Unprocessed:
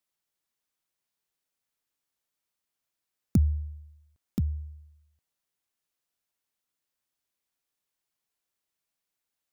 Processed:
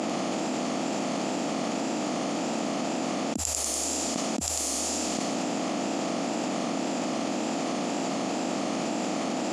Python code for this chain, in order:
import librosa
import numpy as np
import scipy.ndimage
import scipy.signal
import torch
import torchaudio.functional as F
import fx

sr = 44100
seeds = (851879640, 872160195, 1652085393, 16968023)

y = fx.bin_compress(x, sr, power=0.4)
y = fx.env_lowpass(y, sr, base_hz=2300.0, full_db=-23.5)
y = fx.low_shelf(y, sr, hz=400.0, db=-5.0)
y = fx.wow_flutter(y, sr, seeds[0], rate_hz=2.1, depth_cents=120.0)
y = fx.cabinet(y, sr, low_hz=280.0, low_slope=24, high_hz=9700.0, hz=(400.0, 680.0, 1500.0, 2200.0, 3800.0, 7300.0), db=(-9, 5, -10, -4, -5, 8))
y = fx.echo_wet_highpass(y, sr, ms=96, feedback_pct=56, hz=3700.0, wet_db=-5.0)
y = fx.env_flatten(y, sr, amount_pct=100)
y = y * librosa.db_to_amplitude(2.5)